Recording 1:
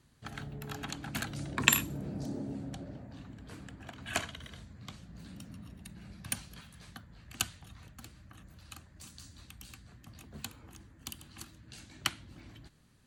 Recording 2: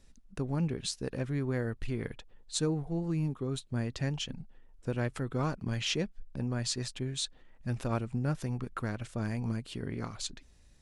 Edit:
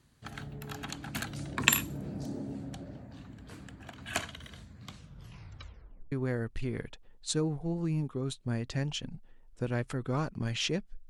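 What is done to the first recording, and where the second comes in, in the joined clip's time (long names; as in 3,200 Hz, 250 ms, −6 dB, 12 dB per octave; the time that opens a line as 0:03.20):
recording 1
0:04.90: tape stop 1.22 s
0:06.12: continue with recording 2 from 0:01.38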